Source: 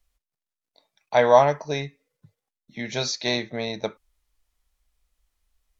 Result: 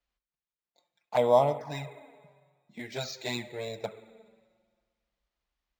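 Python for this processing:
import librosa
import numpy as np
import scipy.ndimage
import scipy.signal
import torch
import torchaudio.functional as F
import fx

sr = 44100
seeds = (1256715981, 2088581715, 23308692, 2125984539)

y = scipy.signal.sosfilt(scipy.signal.butter(2, 57.0, 'highpass', fs=sr, output='sos'), x)
y = fx.rev_spring(y, sr, rt60_s=1.7, pass_ms=(44, 58), chirp_ms=35, drr_db=12.5)
y = fx.env_flanger(y, sr, rest_ms=5.7, full_db=-16.0)
y = np.interp(np.arange(len(y)), np.arange(len(y))[::4], y[::4])
y = y * librosa.db_to_amplitude(-4.5)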